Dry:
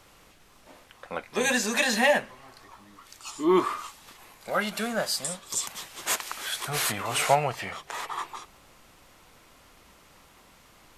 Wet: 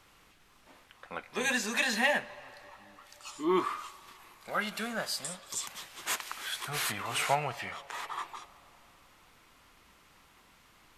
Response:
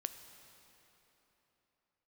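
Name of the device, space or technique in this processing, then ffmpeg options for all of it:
filtered reverb send: -filter_complex "[0:a]asplit=2[s0][s1];[s1]highpass=f=550:w=0.5412,highpass=f=550:w=1.3066,lowpass=4500[s2];[1:a]atrim=start_sample=2205[s3];[s2][s3]afir=irnorm=-1:irlink=0,volume=0.531[s4];[s0][s4]amix=inputs=2:normalize=0,volume=0.473"

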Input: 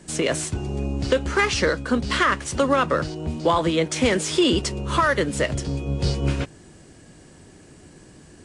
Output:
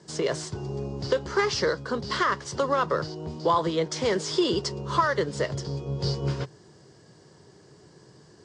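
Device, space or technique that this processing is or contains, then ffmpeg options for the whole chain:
car door speaker: -af "highpass=110,equalizer=f=130:t=q:w=4:g=7,equalizer=f=260:t=q:w=4:g=-8,equalizer=f=420:t=q:w=4:g=7,equalizer=f=1000:t=q:w=4:g=6,equalizer=f=2500:t=q:w=4:g=-9,equalizer=f=4900:t=q:w=4:g=8,lowpass=f=7100:w=0.5412,lowpass=f=7100:w=1.3066,volume=0.501"

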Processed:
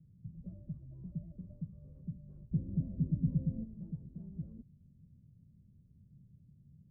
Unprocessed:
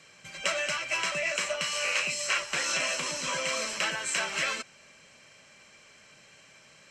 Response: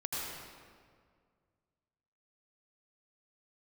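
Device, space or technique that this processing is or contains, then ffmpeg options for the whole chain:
the neighbour's flat through the wall: -filter_complex "[0:a]asettb=1/sr,asplit=3[s0][s1][s2];[s0]atrim=end=2.514[s3];[s1]atrim=start=2.51:end=3.64,asetpts=PTS-STARTPTS,afade=t=in:d=0.004:c=qsin,afade=t=out:st=1.126:d=0.004:c=qsin,tiltshelf=f=1200:g=10[s4];[s2]atrim=start=3.636[s5];[s3][s4]acrossfade=d=0.004:c1=hsin:c2=qsin[s6];[s6][s5]acrossfade=d=0.004:c1=qsin:c2=hsin,lowpass=f=170:w=0.5412,lowpass=f=170:w=1.3066,equalizer=f=81:t=o:w=0.77:g=5,volume=3.16"

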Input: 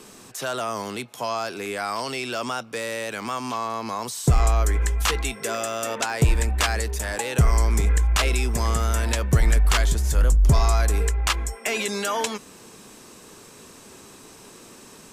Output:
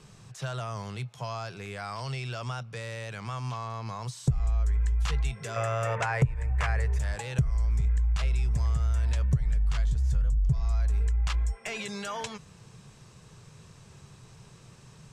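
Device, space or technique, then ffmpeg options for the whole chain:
jukebox: -filter_complex "[0:a]asettb=1/sr,asplit=3[s0][s1][s2];[s0]atrim=end=5.564[s3];[s1]atrim=start=5.56:end=6.99,asetpts=PTS-STARTPTS,afade=t=in:d=0.004:c=qsin,afade=t=out:st=1.426:d=0.004:c=qsin,equalizer=f=125:t=o:w=1:g=9,equalizer=f=250:t=o:w=1:g=-5,equalizer=f=500:t=o:w=1:g=9,equalizer=f=1000:t=o:w=1:g=6,equalizer=f=2000:t=o:w=1:g=10,equalizer=f=4000:t=o:w=1:g=-7[s4];[s2]atrim=start=6.986[s5];[s3][s4]acrossfade=d=0.004:c1=hsin:c2=qsin[s6];[s6][s5]acrossfade=d=0.004:c1=qsin:c2=hsin,lowpass=7000,lowshelf=f=190:t=q:w=3:g=11.5,acompressor=threshold=0.2:ratio=6,volume=0.355"

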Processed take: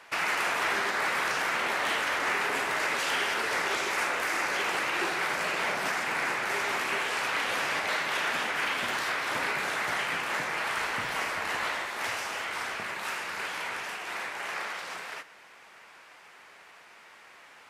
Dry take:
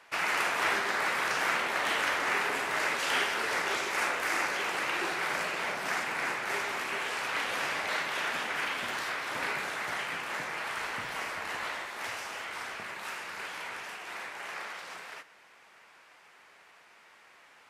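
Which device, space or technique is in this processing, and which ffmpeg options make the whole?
soft clipper into limiter: -af "asoftclip=type=tanh:threshold=0.119,alimiter=level_in=1.12:limit=0.0631:level=0:latency=1:release=196,volume=0.891,volume=1.78"

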